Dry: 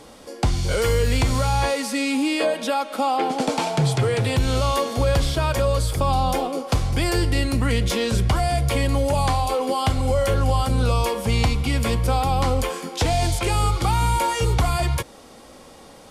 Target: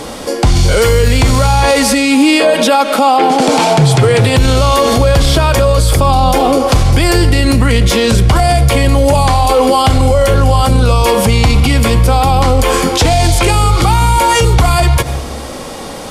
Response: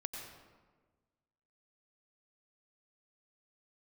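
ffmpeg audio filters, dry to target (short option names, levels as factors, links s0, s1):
-filter_complex "[0:a]asplit=2[s0][s1];[1:a]atrim=start_sample=2205[s2];[s1][s2]afir=irnorm=-1:irlink=0,volume=0.224[s3];[s0][s3]amix=inputs=2:normalize=0,alimiter=level_in=9.44:limit=0.891:release=50:level=0:latency=1,volume=0.891"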